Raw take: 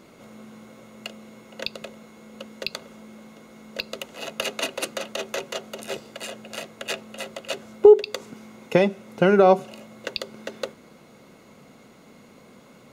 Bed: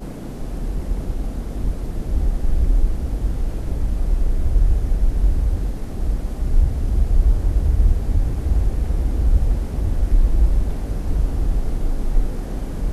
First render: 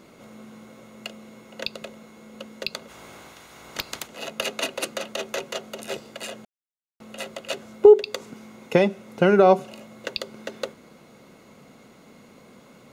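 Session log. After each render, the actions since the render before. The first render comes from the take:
0:02.88–0:04.06: ceiling on every frequency bin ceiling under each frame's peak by 22 dB
0:06.45–0:07.00: silence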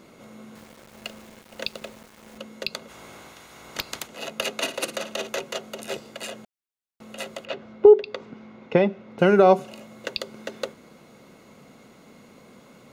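0:00.55–0:02.38: centre clipping without the shift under −44 dBFS
0:04.58–0:05.29: flutter between parallel walls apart 9.6 metres, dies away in 0.31 s
0:07.45–0:09.19: high-frequency loss of the air 240 metres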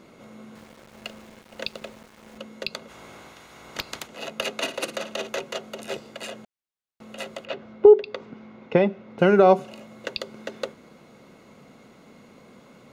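high-shelf EQ 7,000 Hz −7 dB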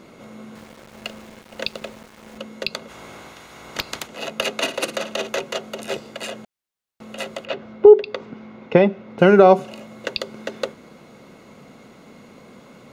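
level +5 dB
brickwall limiter −1 dBFS, peak gain reduction 2.5 dB

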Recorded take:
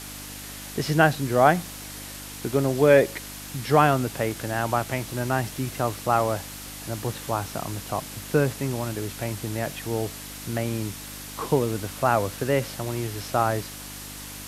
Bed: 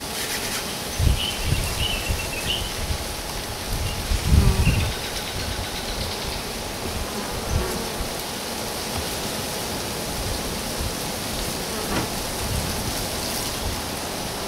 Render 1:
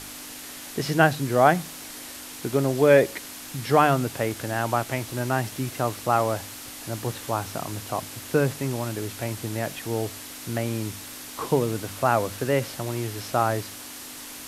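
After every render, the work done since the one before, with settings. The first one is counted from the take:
hum removal 50 Hz, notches 4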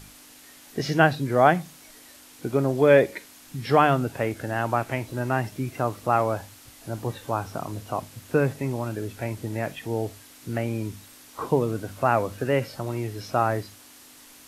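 noise reduction from a noise print 10 dB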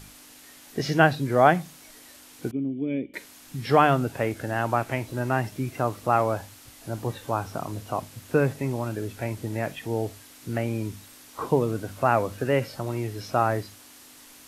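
0:02.51–0:03.14: formant resonators in series i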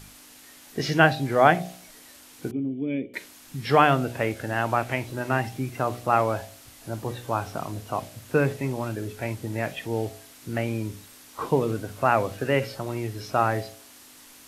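hum removal 60.66 Hz, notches 13
dynamic equaliser 2,700 Hz, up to +4 dB, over −41 dBFS, Q 0.8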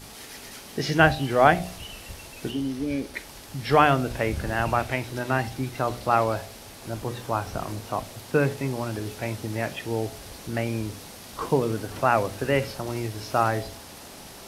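mix in bed −16 dB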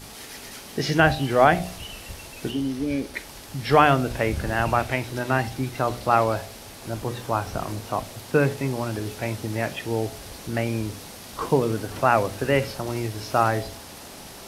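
level +2 dB
brickwall limiter −3 dBFS, peak gain reduction 3 dB

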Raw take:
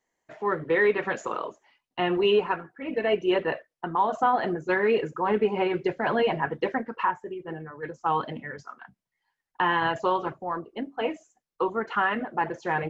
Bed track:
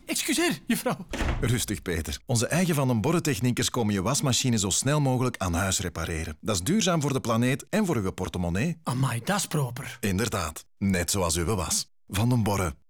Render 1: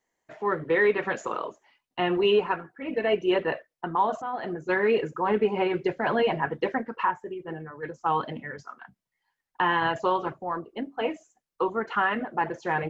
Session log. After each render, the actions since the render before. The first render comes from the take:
0:04.22–0:04.78: fade in, from −13.5 dB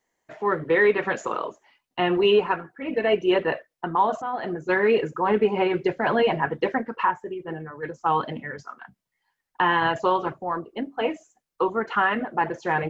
level +3 dB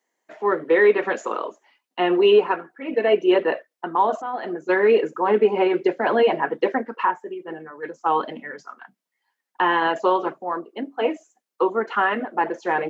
high-pass filter 220 Hz 24 dB per octave
dynamic equaliser 430 Hz, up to +4 dB, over −29 dBFS, Q 0.75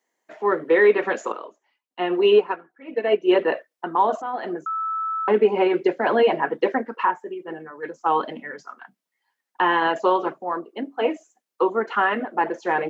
0:01.32–0:03.29: expander for the loud parts, over −32 dBFS
0:04.66–0:05.28: beep over 1,310 Hz −23 dBFS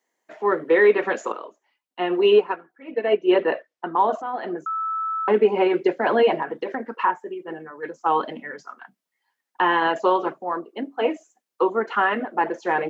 0:02.92–0:04.58: high-frequency loss of the air 65 metres
0:06.42–0:07.01: downward compressor, threshold −23 dBFS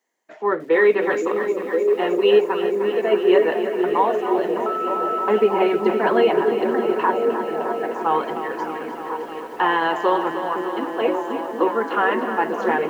echo through a band-pass that steps 515 ms, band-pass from 250 Hz, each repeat 0.7 octaves, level −0.5 dB
feedback echo at a low word length 307 ms, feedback 80%, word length 8 bits, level −10 dB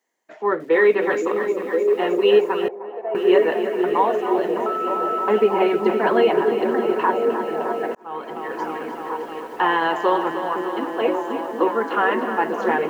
0:02.68–0:03.15: resonant band-pass 760 Hz, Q 3.2
0:07.95–0:08.63: fade in linear

